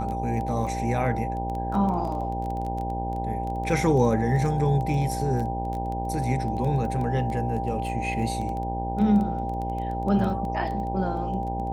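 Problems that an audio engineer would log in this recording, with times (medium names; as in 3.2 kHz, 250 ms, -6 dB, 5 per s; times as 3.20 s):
buzz 60 Hz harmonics 16 -31 dBFS
crackle 13 per s -30 dBFS
whine 790 Hz -30 dBFS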